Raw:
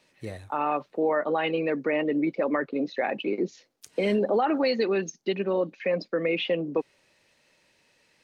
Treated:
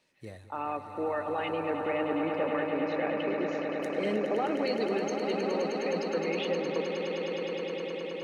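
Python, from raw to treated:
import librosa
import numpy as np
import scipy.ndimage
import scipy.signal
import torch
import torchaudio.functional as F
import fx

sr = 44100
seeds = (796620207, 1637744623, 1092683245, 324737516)

y = fx.echo_swell(x, sr, ms=104, loudest=8, wet_db=-10)
y = y * librosa.db_to_amplitude(-7.5)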